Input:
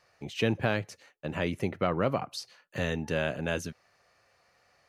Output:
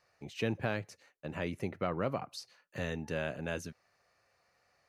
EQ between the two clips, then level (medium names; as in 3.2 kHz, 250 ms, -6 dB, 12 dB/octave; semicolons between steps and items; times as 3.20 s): peaking EQ 3.2 kHz -4 dB 0.27 oct; -6.0 dB